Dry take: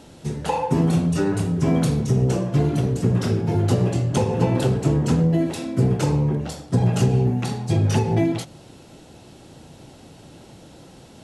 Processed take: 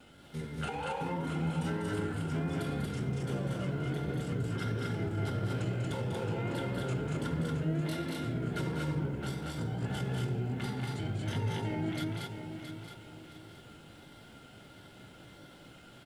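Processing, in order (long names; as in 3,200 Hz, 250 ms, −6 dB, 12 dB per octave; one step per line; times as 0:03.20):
thirty-one-band graphic EQ 1,600 Hz +7 dB, 3,150 Hz +9 dB, 6,300 Hz −7 dB
brickwall limiter −17.5 dBFS, peak gain reduction 10.5 dB
tape wow and flutter 120 cents
tuned comb filter 290 Hz, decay 0.55 s, harmonics all, mix 40%
hollow resonant body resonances 1,400/2,100 Hz, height 16 dB, ringing for 60 ms
tempo change 0.7×
background noise pink −66 dBFS
loudspeakers that aren't time-aligned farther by 67 metres −7 dB, 80 metres −2 dB
feedback echo at a low word length 670 ms, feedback 35%, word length 10 bits, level −8.5 dB
level −8 dB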